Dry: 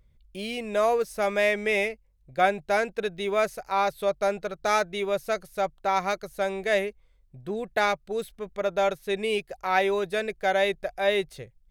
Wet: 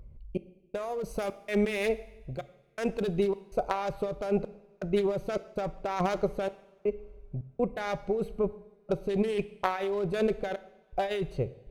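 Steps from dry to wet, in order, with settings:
adaptive Wiener filter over 25 samples
0:01.04–0:03.28: high-shelf EQ 4,800 Hz +8.5 dB
compressor whose output falls as the input rises −34 dBFS, ratio −1
gate pattern "xx..xxx.xxx" 81 BPM −60 dB
coupled-rooms reverb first 0.83 s, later 3.3 s, from −22 dB, DRR 13.5 dB
level +5 dB

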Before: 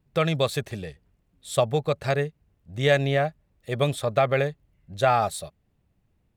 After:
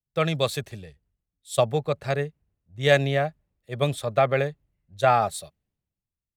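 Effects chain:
multiband upward and downward expander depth 70%
level −1 dB

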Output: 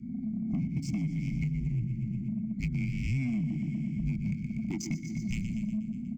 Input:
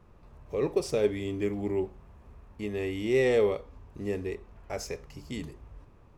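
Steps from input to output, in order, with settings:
adaptive Wiener filter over 15 samples
dynamic equaliser 420 Hz, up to +6 dB, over −42 dBFS, Q 7.9
frequency shifter −260 Hz
repeating echo 121 ms, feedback 57%, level −10.5 dB
in parallel at +3 dB: brickwall limiter −23.5 dBFS, peak gain reduction 13 dB
on the sum: high-shelf EQ 3,800 Hz +11.5 dB
hollow resonant body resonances 230/1,300/2,200/3,800 Hz, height 17 dB, ringing for 25 ms
on a send at −19 dB: convolution reverb RT60 1.3 s, pre-delay 98 ms
on the sum: downward compressor 8 to 1, threshold −25 dBFS, peak gain reduction 23.5 dB
elliptic band-stop filter 360–2,000 Hz, stop band 40 dB
soft clipping −22 dBFS, distortion −19 dB
phaser with its sweep stopped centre 2,600 Hz, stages 8

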